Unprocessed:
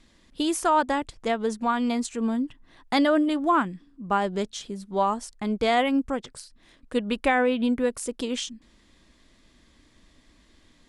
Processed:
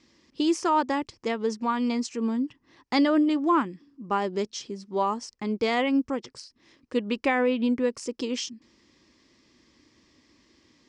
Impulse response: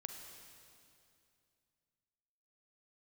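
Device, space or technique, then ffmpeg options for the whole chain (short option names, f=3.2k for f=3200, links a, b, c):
car door speaker: -af "highpass=110,equalizer=f=180:t=q:w=4:g=-5,equalizer=f=350:t=q:w=4:g=4,equalizer=f=680:t=q:w=4:g=-8,equalizer=f=1.5k:t=q:w=4:g=-6,equalizer=f=3.6k:t=q:w=4:g=-6,equalizer=f=5.3k:t=q:w=4:g=7,lowpass=f=6.7k:w=0.5412,lowpass=f=6.7k:w=1.3066"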